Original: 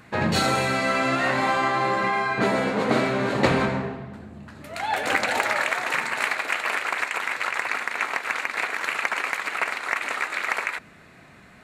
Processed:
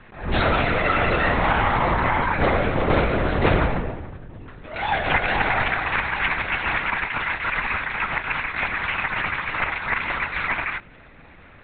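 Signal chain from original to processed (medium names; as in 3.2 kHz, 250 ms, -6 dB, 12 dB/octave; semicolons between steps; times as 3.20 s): LPC vocoder at 8 kHz whisper; attacks held to a fixed rise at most 120 dB/s; trim +3 dB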